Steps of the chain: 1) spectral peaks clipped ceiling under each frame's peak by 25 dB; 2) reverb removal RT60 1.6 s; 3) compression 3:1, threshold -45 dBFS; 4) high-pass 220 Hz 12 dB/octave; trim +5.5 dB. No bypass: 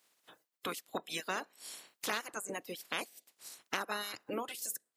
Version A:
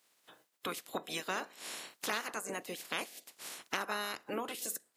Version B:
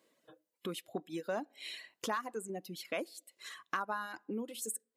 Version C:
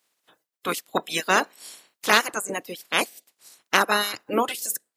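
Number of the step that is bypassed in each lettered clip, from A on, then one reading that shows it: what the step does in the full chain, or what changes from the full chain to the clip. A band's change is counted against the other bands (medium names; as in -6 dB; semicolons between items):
2, momentary loudness spread change -3 LU; 1, 4 kHz band -6.0 dB; 3, mean gain reduction 11.5 dB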